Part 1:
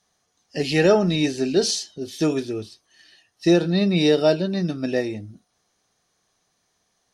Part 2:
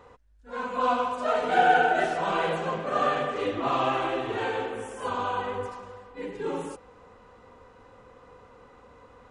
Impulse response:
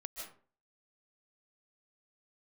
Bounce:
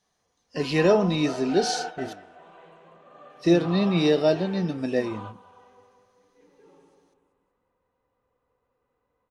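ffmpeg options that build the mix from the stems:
-filter_complex "[0:a]volume=2dB,asplit=3[a][b][c];[a]atrim=end=2.13,asetpts=PTS-STARTPTS,afade=t=out:st=2.126:d=0.004:c=hsin[d];[b]atrim=start=2.13:end=3.3,asetpts=PTS-STARTPTS,volume=0[e];[c]atrim=start=3.3,asetpts=PTS-STARTPTS,afade=t=in:d=0.004:c=hsin[f];[d][e][f]concat=n=3:v=0:a=1,asplit=2[g][h];[1:a]volume=-5.5dB,asplit=2[i][j];[j]volume=-15dB[k];[h]apad=whole_len=410307[l];[i][l]sidechaingate=range=-24dB:threshold=-35dB:ratio=16:detection=peak[m];[k]aecho=0:1:191|382|573|764|955|1146|1337:1|0.5|0.25|0.125|0.0625|0.0312|0.0156[n];[g][m][n]amix=inputs=3:normalize=0,equalizer=f=1.4k:w=6.1:g=-3,flanger=delay=3.4:depth=8.6:regen=90:speed=0.62:shape=sinusoidal,highshelf=f=4.6k:g=-6"

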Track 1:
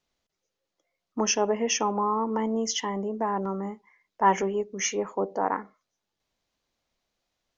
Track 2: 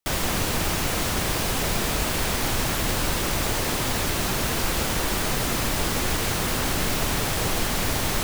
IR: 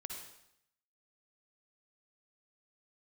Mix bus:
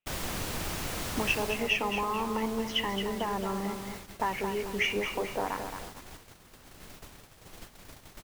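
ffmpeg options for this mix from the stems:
-filter_complex "[0:a]acompressor=threshold=-29dB:ratio=6,lowpass=f=2.6k:t=q:w=5,volume=-0.5dB,asplit=2[a][b];[b]volume=-7.5dB[c];[1:a]volume=-10dB,afade=t=out:st=1.31:d=0.42:silence=0.354813[d];[c]aecho=0:1:221|442|663|884|1105:1|0.39|0.152|0.0593|0.0231[e];[a][d][e]amix=inputs=3:normalize=0,agate=range=-14dB:threshold=-41dB:ratio=16:detection=peak"

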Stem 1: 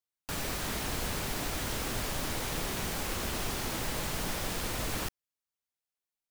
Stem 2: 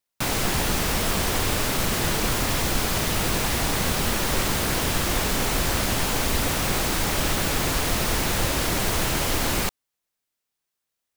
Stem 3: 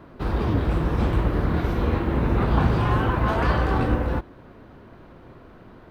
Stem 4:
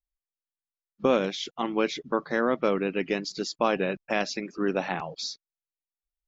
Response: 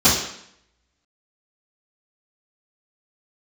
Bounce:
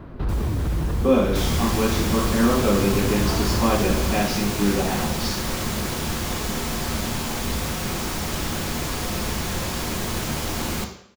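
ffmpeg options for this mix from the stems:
-filter_complex "[0:a]volume=-6.5dB[a];[1:a]adelay=1150,volume=-6dB,asplit=2[b][c];[c]volume=-23.5dB[d];[2:a]lowshelf=f=170:g=11,alimiter=limit=-19.5dB:level=0:latency=1,volume=2dB[e];[3:a]volume=-9dB,asplit=3[f][g][h];[g]volume=-11.5dB[i];[h]apad=whole_len=260451[j];[e][j]sidechaincompress=threshold=-35dB:ratio=8:attack=16:release=174[k];[4:a]atrim=start_sample=2205[l];[d][i]amix=inputs=2:normalize=0[m];[m][l]afir=irnorm=-1:irlink=0[n];[a][b][k][f][n]amix=inputs=5:normalize=0"

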